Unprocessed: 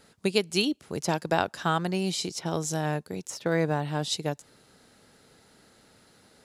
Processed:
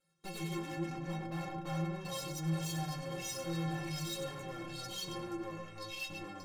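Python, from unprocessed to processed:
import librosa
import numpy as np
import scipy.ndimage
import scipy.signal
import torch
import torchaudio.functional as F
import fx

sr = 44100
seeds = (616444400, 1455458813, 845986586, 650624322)

y = fx.spec_quant(x, sr, step_db=15)
y = fx.cheby1_bandpass(y, sr, low_hz=120.0, high_hz=1100.0, order=3, at=(0.44, 2.05))
y = fx.echo_feedback(y, sr, ms=93, feedback_pct=18, wet_db=-11)
y = fx.leveller(y, sr, passes=3)
y = fx.echo_pitch(y, sr, ms=94, semitones=-3, count=3, db_per_echo=-3.0)
y = fx.tube_stage(y, sr, drive_db=28.0, bias=0.7)
y = fx.stiff_resonator(y, sr, f0_hz=160.0, decay_s=0.46, stiffness=0.03)
y = F.gain(torch.from_numpy(y), 3.0).numpy()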